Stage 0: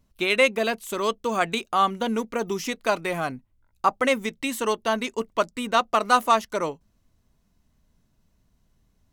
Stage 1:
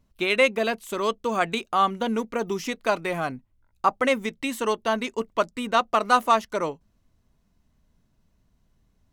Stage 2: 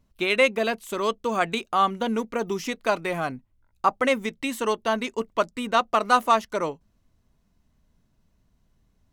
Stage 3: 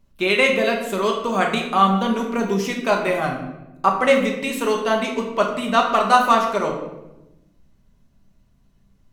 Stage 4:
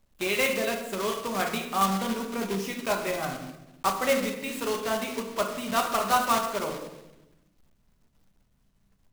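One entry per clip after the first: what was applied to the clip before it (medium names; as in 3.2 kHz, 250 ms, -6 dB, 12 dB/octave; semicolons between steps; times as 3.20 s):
treble shelf 5 kHz -5 dB
no audible change
reverberation RT60 0.95 s, pre-delay 5 ms, DRR 0 dB; trim +2 dB
block-companded coder 3-bit; trim -9 dB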